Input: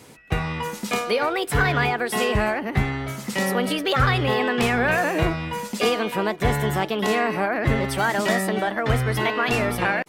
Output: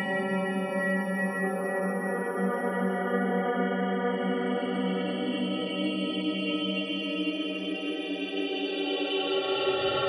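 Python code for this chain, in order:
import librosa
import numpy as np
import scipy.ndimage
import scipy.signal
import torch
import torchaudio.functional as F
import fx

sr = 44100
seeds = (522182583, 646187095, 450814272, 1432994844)

y = fx.spec_topn(x, sr, count=32)
y = fx.paulstretch(y, sr, seeds[0], factor=20.0, window_s=0.25, from_s=3.41)
y = y * 10.0 ** (-5.5 / 20.0)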